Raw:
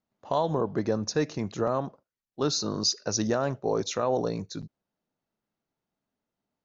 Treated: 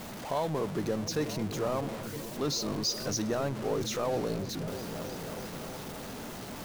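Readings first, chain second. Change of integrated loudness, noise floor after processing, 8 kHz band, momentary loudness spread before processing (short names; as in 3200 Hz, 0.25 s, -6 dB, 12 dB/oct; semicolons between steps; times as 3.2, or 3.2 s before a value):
-5.0 dB, -42 dBFS, n/a, 6 LU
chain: zero-crossing step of -28 dBFS; repeats that get brighter 0.321 s, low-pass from 200 Hz, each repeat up 1 oct, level -6 dB; gain -7 dB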